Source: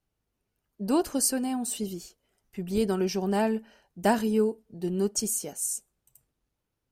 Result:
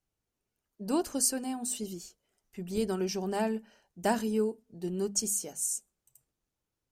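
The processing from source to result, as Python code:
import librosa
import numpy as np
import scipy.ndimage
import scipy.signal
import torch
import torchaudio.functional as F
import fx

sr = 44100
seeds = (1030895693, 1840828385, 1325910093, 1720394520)

y = fx.peak_eq(x, sr, hz=6800.0, db=5.0, octaves=0.81)
y = fx.hum_notches(y, sr, base_hz=50, count=5)
y = F.gain(torch.from_numpy(y), -4.5).numpy()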